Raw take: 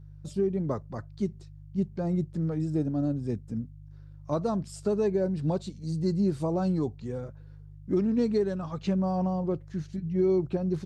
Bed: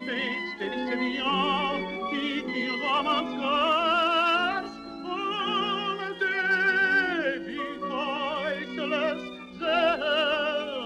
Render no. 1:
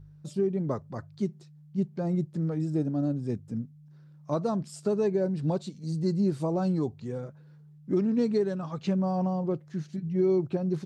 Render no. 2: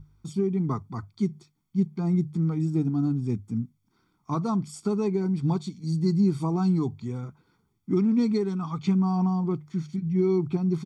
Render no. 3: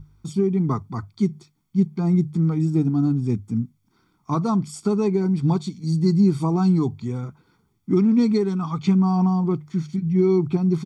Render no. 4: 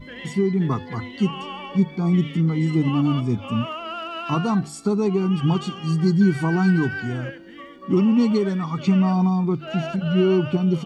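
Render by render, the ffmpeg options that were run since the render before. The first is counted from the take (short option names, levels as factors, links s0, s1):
-af "bandreject=f=50:t=h:w=4,bandreject=f=100:t=h:w=4"
-af "bandreject=f=50:t=h:w=6,bandreject=f=100:t=h:w=6,bandreject=f=150:t=h:w=6,aecho=1:1:0.9:0.99"
-af "volume=1.78"
-filter_complex "[1:a]volume=0.398[s0];[0:a][s0]amix=inputs=2:normalize=0"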